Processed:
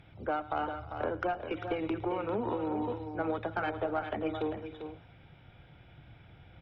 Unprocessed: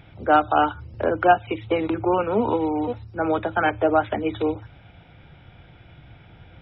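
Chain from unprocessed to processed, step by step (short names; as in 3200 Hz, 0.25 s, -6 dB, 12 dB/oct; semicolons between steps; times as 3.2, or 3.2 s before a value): compressor 8:1, threshold -21 dBFS, peak gain reduction 11 dB; added harmonics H 4 -24 dB, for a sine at -11.5 dBFS; tapped delay 0.109/0.314/0.397/0.448 s -18.5/-19/-8/-18.5 dB; gain -8 dB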